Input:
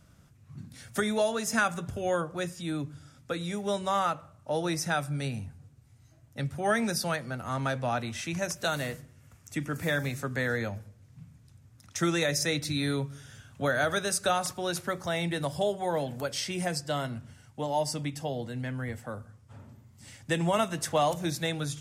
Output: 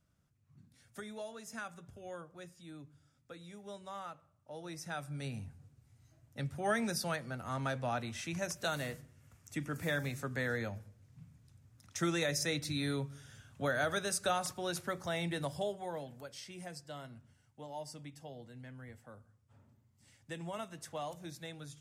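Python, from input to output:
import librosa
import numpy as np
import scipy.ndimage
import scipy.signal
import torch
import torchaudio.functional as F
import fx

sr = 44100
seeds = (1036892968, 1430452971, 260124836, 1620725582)

y = fx.gain(x, sr, db=fx.line((4.53, -17.5), (5.43, -6.0), (15.43, -6.0), (16.25, -15.5)))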